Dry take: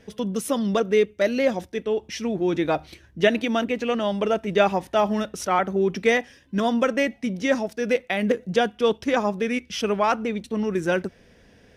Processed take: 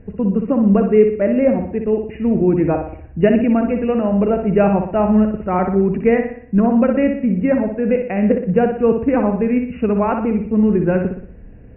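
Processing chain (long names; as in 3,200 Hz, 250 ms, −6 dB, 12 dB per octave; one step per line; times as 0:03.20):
linear-phase brick-wall low-pass 2,900 Hz
spectral tilt −4.5 dB per octave
flutter between parallel walls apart 10.4 metres, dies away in 0.57 s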